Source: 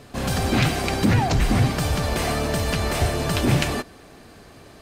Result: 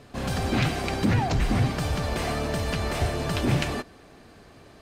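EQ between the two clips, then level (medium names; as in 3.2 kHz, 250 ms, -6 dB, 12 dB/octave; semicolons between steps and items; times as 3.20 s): treble shelf 7.7 kHz -7.5 dB; -4.0 dB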